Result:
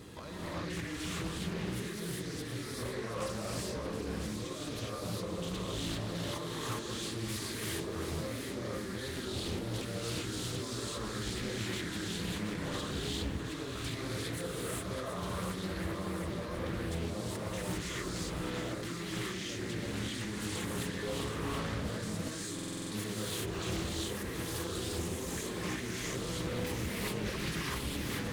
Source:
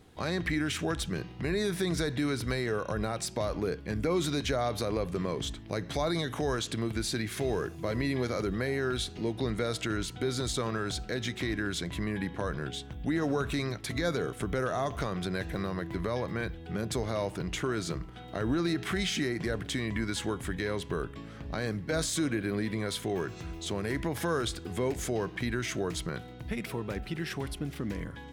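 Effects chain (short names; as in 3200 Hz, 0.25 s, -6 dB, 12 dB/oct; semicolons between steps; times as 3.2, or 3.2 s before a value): high shelf 4900 Hz +5 dB; negative-ratio compressor -42 dBFS, ratio -1; notch comb 750 Hz; soft clip -39 dBFS, distortion -10 dB; thinning echo 0.725 s, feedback 67%, high-pass 1100 Hz, level -7.5 dB; non-linear reverb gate 0.43 s rising, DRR -7.5 dB; stuck buffer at 22.54, samples 2048, times 7; Doppler distortion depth 0.49 ms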